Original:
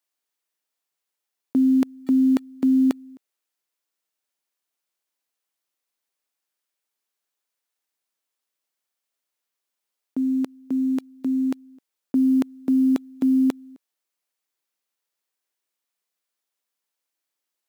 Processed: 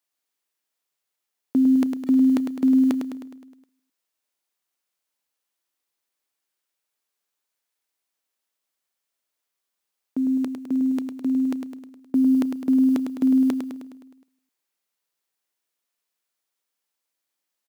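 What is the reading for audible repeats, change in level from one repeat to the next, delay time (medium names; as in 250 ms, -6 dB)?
6, -5.0 dB, 104 ms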